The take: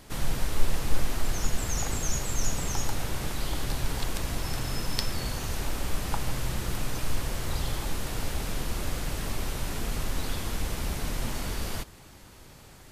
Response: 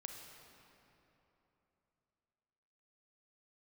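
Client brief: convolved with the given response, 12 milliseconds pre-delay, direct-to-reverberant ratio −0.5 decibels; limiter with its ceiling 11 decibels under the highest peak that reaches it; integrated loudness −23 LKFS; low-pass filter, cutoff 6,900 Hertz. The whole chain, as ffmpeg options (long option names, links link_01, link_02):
-filter_complex "[0:a]lowpass=6900,alimiter=limit=-17.5dB:level=0:latency=1,asplit=2[link_01][link_02];[1:a]atrim=start_sample=2205,adelay=12[link_03];[link_02][link_03]afir=irnorm=-1:irlink=0,volume=4dB[link_04];[link_01][link_04]amix=inputs=2:normalize=0,volume=8dB"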